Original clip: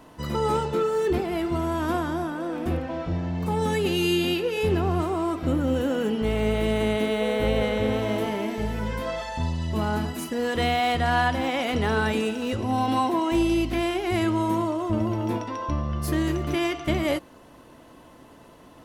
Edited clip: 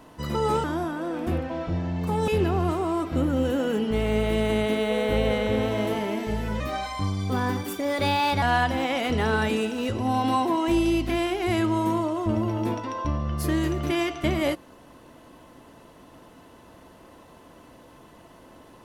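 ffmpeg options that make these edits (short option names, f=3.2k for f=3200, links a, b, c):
-filter_complex "[0:a]asplit=5[a][b][c][d][e];[a]atrim=end=0.642[f];[b]atrim=start=2.028:end=3.672[g];[c]atrim=start=4.588:end=8.914[h];[d]atrim=start=8.91:end=11.06,asetpts=PTS-STARTPTS,asetrate=52038,aresample=44100[i];[e]atrim=start=11.056[j];[f][g]acrossfade=d=0.004:c1=hsin:c2=hsin[k];[k][h]acrossfade=d=0.004:c1=hsin:c2=hsin[l];[l][i]acrossfade=d=0.004:c1=hsin:c2=hsin[m];[m][j]acrossfade=d=0.004:c1=hsin:c2=hsin"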